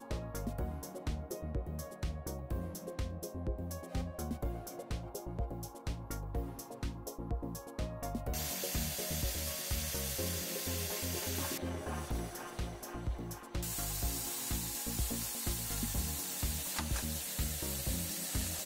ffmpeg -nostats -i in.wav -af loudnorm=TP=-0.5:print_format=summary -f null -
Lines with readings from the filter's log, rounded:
Input Integrated:    -37.8 LUFS
Input True Peak:     -20.3 dBTP
Input LRA:             5.5 LU
Input Threshold:     -47.8 LUFS